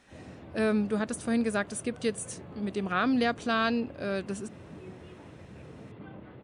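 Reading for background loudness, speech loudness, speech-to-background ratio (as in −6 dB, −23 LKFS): −47.5 LKFS, −30.0 LKFS, 17.5 dB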